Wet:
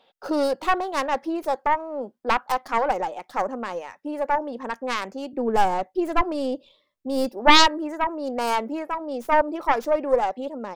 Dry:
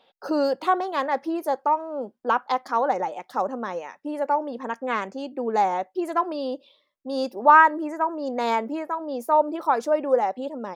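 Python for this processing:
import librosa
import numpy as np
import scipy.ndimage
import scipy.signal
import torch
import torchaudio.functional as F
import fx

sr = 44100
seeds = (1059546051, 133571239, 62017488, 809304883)

y = fx.tracing_dist(x, sr, depth_ms=0.38)
y = fx.low_shelf(y, sr, hz=210.0, db=11.0, at=(5.33, 7.29))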